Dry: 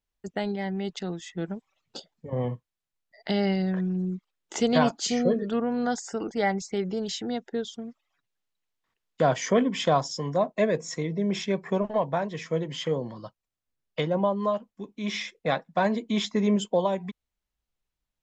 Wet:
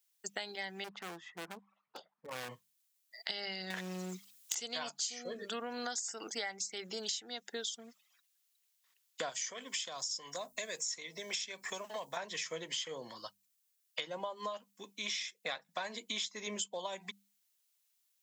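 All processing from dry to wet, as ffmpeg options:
ffmpeg -i in.wav -filter_complex "[0:a]asettb=1/sr,asplit=3[link_01][link_02][link_03];[link_01]atrim=end=0.844[link_04];[link_02]atrim=start=0.84:end=2.49,asetpts=PTS-STARTPTS,afade=type=in:duration=0.004:curve=qsin,afade=type=out:start_time=1.646:duration=0.004:curve=qsin,lowpass=frequency=1100:width_type=q:width=2.3,asoftclip=type=hard:threshold=-31.5dB[link_05];[link_03]atrim=start=2.486[link_06];[link_04][link_05]acrossfade=duration=0.004:curve1=hsin:curve2=qsin[link_07];[link_07][link_06]acrossfade=duration=0.004:curve1=qsin:curve2=hsin,asettb=1/sr,asplit=3[link_08][link_09][link_10];[link_08]atrim=end=3.704[link_11];[link_09]atrim=start=3.7:end=4.55,asetpts=PTS-STARTPTS,afade=type=in:duration=0.004:curve=qsin,afade=type=out:start_time=0.846:duration=0.004:curve=qsin,highshelf=frequency=2700:gain=9.5,acontrast=40,aeval=exprs='clip(val(0),-1,0.0668)':channel_layout=same[link_12];[link_10]atrim=start=4.546[link_13];[link_11][link_12]acrossfade=duration=0.004:curve1=hsin:curve2=qsin[link_14];[link_14][link_13]acrossfade=duration=0.004:curve1=qsin:curve2=hsin,asettb=1/sr,asplit=3[link_15][link_16][link_17];[link_15]atrim=end=9.294[link_18];[link_16]atrim=start=9.29:end=12.17,asetpts=PTS-STARTPTS,afade=type=in:duration=0.004:curve=qsin,afade=type=out:start_time=2.876:duration=0.004:curve=qsin,highshelf=frequency=5100:gain=9.5,aeval=exprs='val(0)+0.00891*(sin(2*PI*50*n/s)+sin(2*PI*2*50*n/s)/2+sin(2*PI*3*50*n/s)/3+sin(2*PI*4*50*n/s)/4+sin(2*PI*5*50*n/s)/5)':channel_layout=same,acrossover=split=520|5500[link_19][link_20][link_21];[link_19]acompressor=threshold=-36dB:ratio=4[link_22];[link_20]acompressor=threshold=-36dB:ratio=4[link_23];[link_21]acompressor=threshold=-47dB:ratio=4[link_24];[link_22][link_23][link_24]amix=inputs=3:normalize=0[link_25];[link_17]atrim=start=12.166[link_26];[link_18][link_25]acrossfade=duration=0.004:curve1=hsin:curve2=qsin[link_27];[link_27][link_26]acrossfade=duration=0.004:curve1=qsin:curve2=hsin,aderivative,bandreject=frequency=50:width_type=h:width=6,bandreject=frequency=100:width_type=h:width=6,bandreject=frequency=150:width_type=h:width=6,bandreject=frequency=200:width_type=h:width=6,acompressor=threshold=-50dB:ratio=8,volume=14dB" out.wav

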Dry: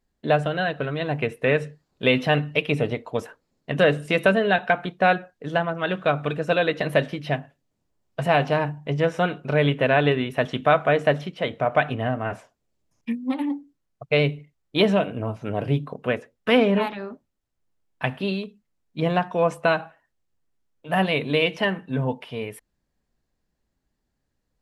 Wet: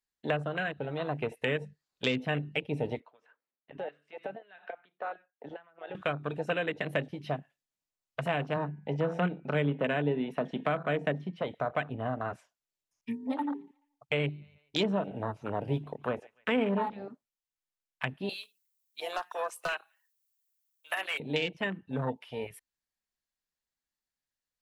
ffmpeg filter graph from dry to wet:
ffmpeg -i in.wav -filter_complex "[0:a]asettb=1/sr,asplit=3[link_01][link_02][link_03];[link_01]atrim=end=3.004[link_04];[link_02]atrim=start=3:end=5.95,asetpts=PTS-STARTPTS,afade=type=in:duration=0.004:curve=qsin,afade=type=out:start_time=2.946:duration=0.004:curve=qsin,acompressor=threshold=-29dB:ratio=5:attack=3.2:release=140:knee=1:detection=peak,tremolo=f=2.4:d=0.74,highpass=210,lowpass=2400[link_05];[link_03]atrim=start=5.946[link_06];[link_04][link_05]acrossfade=duration=0.004:curve1=hsin:curve2=qsin[link_07];[link_07][link_06]acrossfade=duration=0.004:curve1=qsin:curve2=hsin,asettb=1/sr,asplit=3[link_08][link_09][link_10];[link_08]atrim=end=8.564[link_11];[link_09]atrim=start=8.56:end=11.42,asetpts=PTS-STARTPTS,afade=type=in:duration=0.004:curve=qsin,afade=type=out:start_time=2.856:duration=0.004:curve=qsin,lowpass=frequency=3400:poles=1,lowshelf=frequency=130:width_type=q:width=3:gain=-9,bandreject=frequency=166.7:width_type=h:width=4,bandreject=frequency=333.4:width_type=h:width=4,bandreject=frequency=500.1:width_type=h:width=4,bandreject=frequency=666.8:width_type=h:width=4,bandreject=frequency=833.5:width_type=h:width=4,bandreject=frequency=1000.2:width_type=h:width=4,bandreject=frequency=1166.9:width_type=h:width=4,bandreject=frequency=1333.6:width_type=h:width=4,bandreject=frequency=1500.3:width_type=h:width=4,bandreject=frequency=1667:width_type=h:width=4,bandreject=frequency=1833.7:width_type=h:width=4,bandreject=frequency=2000.4:width_type=h:width=4,bandreject=frequency=2167.1:width_type=h:width=4,bandreject=frequency=2333.8:width_type=h:width=4,bandreject=frequency=2500.5:width_type=h:width=4[link_12];[link_10]atrim=start=11.416[link_13];[link_11][link_12]acrossfade=duration=0.004:curve1=hsin:curve2=qsin[link_14];[link_14][link_13]acrossfade=duration=0.004:curve1=qsin:curve2=hsin,asettb=1/sr,asplit=3[link_15][link_16][link_17];[link_15]atrim=end=13.114[link_18];[link_16]atrim=start=13.11:end=17.05,asetpts=PTS-STARTPTS,afade=type=in:duration=0.004:curve=qsin,afade=type=out:start_time=3.936:duration=0.004:curve=qsin,equalizer=frequency=880:width=7:gain=9,asplit=2[link_19][link_20];[link_20]adelay=143,lowpass=frequency=4200:poles=1,volume=-21.5dB,asplit=2[link_21][link_22];[link_22]adelay=143,lowpass=frequency=4200:poles=1,volume=0.49,asplit=2[link_23][link_24];[link_24]adelay=143,lowpass=frequency=4200:poles=1,volume=0.49[link_25];[link_19][link_21][link_23][link_25]amix=inputs=4:normalize=0,atrim=end_sample=173754[link_26];[link_17]atrim=start=17.046[link_27];[link_18][link_26]acrossfade=duration=0.004:curve1=hsin:curve2=qsin[link_28];[link_28][link_27]acrossfade=duration=0.004:curve1=qsin:curve2=hsin,asettb=1/sr,asplit=3[link_29][link_30][link_31];[link_29]atrim=end=18.294[link_32];[link_30]atrim=start=18.29:end=21.2,asetpts=PTS-STARTPTS,afade=type=in:duration=0.004:curve=qsin,afade=type=out:start_time=2.906:duration=0.004:curve=qsin,highpass=frequency=800:poles=1,aemphasis=mode=production:type=riaa,aeval=exprs='0.15*(abs(mod(val(0)/0.15+3,4)-2)-1)':channel_layout=same[link_33];[link_31]atrim=start=21.196[link_34];[link_32][link_33]acrossfade=duration=0.004:curve1=hsin:curve2=qsin[link_35];[link_35][link_34]acrossfade=duration=0.004:curve1=qsin:curve2=hsin,afwtdn=0.0447,tiltshelf=frequency=810:gain=-10,acrossover=split=410[link_36][link_37];[link_37]acompressor=threshold=-33dB:ratio=5[link_38];[link_36][link_38]amix=inputs=2:normalize=0" out.wav

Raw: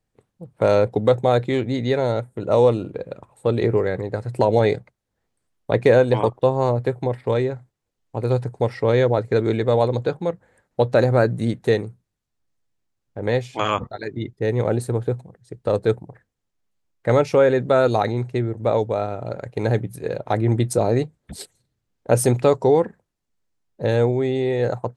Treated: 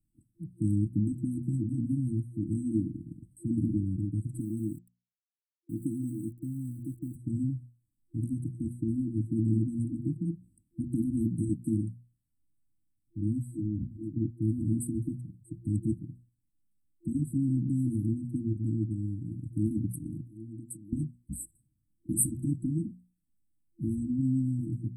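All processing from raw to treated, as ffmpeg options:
ffmpeg -i in.wav -filter_complex "[0:a]asettb=1/sr,asplit=3[link_01][link_02][link_03];[link_01]atrim=end=4.394[link_04];[link_02]atrim=start=4.39:end=7.16,asetpts=PTS-STARTPTS,afade=type=in:duration=0.004:curve=qsin,afade=type=out:start_time=2.766:duration=0.004:curve=qsin,highpass=frequency=440:poles=1,aeval=exprs='val(0)*gte(abs(val(0)),0.00631)':channel_layout=same[link_05];[link_03]atrim=start=7.156[link_06];[link_04][link_05]acrossfade=duration=0.004:curve1=hsin:curve2=qsin[link_07];[link_07][link_06]acrossfade=duration=0.004:curve1=qsin:curve2=hsin,asettb=1/sr,asplit=3[link_08][link_09][link_10];[link_08]atrim=end=20.214[link_11];[link_09]atrim=start=20.21:end=20.93,asetpts=PTS-STARTPTS,afade=type=in:duration=0.004:curve=qsin,afade=type=out:start_time=0.716:duration=0.004:curve=qsin,highpass=frequency=360:poles=1,acompressor=threshold=-41dB:ratio=2.5:attack=3.2:release=140:knee=1:detection=peak[link_12];[link_10]atrim=start=20.926[link_13];[link_11][link_12]acrossfade=duration=0.004:curve1=hsin:curve2=qsin[link_14];[link_14][link_13]acrossfade=duration=0.004:curve1=qsin:curve2=hsin,afftfilt=real='re*lt(hypot(re,im),0.631)':imag='im*lt(hypot(re,im),0.631)':win_size=1024:overlap=0.75,bandreject=frequency=60:width_type=h:width=6,bandreject=frequency=120:width_type=h:width=6,bandreject=frequency=180:width_type=h:width=6,bandreject=frequency=240:width_type=h:width=6,afftfilt=real='re*(1-between(b*sr/4096,340,7700))':imag='im*(1-between(b*sr/4096,340,7700))':win_size=4096:overlap=0.75" out.wav

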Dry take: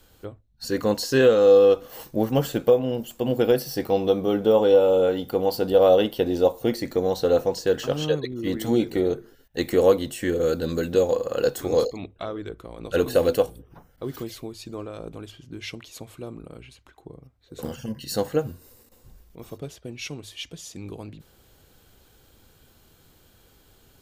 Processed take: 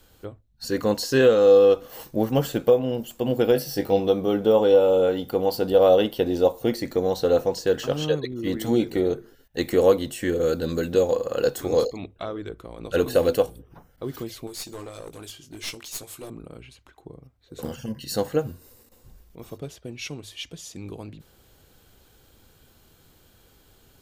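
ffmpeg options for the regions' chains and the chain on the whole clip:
ffmpeg -i in.wav -filter_complex "[0:a]asettb=1/sr,asplit=3[link_01][link_02][link_03];[link_01]atrim=end=3.544[link_04];[link_02]atrim=start=3.54:end=4,asetpts=PTS-STARTPTS,afade=type=in:duration=0.004:curve=qsin,afade=type=out:start_time=0.456:duration=0.004:curve=qsin,bandreject=frequency=1100:width=8.1,asplit=2[link_05][link_06];[link_06]adelay=20,volume=-7.5dB[link_07];[link_05][link_07]amix=inputs=2:normalize=0,atrim=end_sample=20286[link_08];[link_03]atrim=start=3.996[link_09];[link_04][link_08]acrossfade=duration=0.004:curve1=hsin:curve2=qsin[link_10];[link_10][link_09]acrossfade=duration=0.004:curve1=qsin:curve2=hsin,asettb=1/sr,asplit=3[link_11][link_12][link_13];[link_11]atrim=end=14.474[link_14];[link_12]atrim=start=14.47:end=16.3,asetpts=PTS-STARTPTS,afade=type=in:duration=0.004:curve=qsin,afade=type=out:start_time=1.826:duration=0.004:curve=qsin,bass=frequency=250:gain=-7,treble=frequency=4000:gain=13,asplit=2[link_15][link_16];[link_16]adelay=20,volume=-8.5dB[link_17];[link_15][link_17]amix=inputs=2:normalize=0,atrim=end_sample=80703,aeval=exprs='clip(val(0),-1,0.0158)':channel_layout=same[link_18];[link_13]atrim=start=16.296[link_19];[link_14][link_18]acrossfade=duration=0.004:curve1=hsin:curve2=qsin[link_20];[link_20][link_19]acrossfade=duration=0.004:curve1=qsin:curve2=hsin" out.wav

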